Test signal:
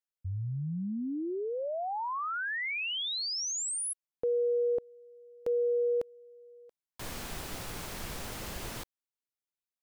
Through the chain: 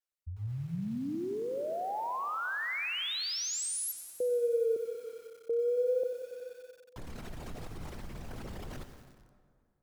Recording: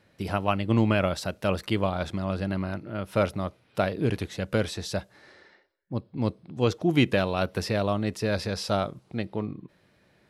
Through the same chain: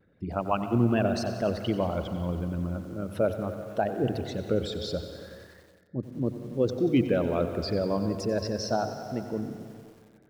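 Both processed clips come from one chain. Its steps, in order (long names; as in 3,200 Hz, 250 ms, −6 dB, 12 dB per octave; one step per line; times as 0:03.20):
spectral envelope exaggerated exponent 2
mains-hum notches 50/100/150 Hz
tape wow and flutter 0.34 Hz 140 cents
dense smooth reverb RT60 2.1 s, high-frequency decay 0.65×, pre-delay 105 ms, DRR 11 dB
feedback echo at a low word length 92 ms, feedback 80%, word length 8 bits, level −13.5 dB
level −1.5 dB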